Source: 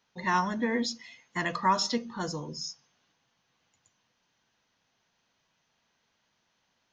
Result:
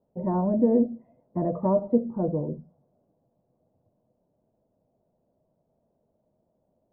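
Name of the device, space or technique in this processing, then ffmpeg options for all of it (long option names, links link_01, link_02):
under water: -af "lowpass=frequency=590:width=0.5412,lowpass=frequency=590:width=1.3066,equalizer=frequency=620:width_type=o:width=0.33:gain=9.5,volume=8.5dB"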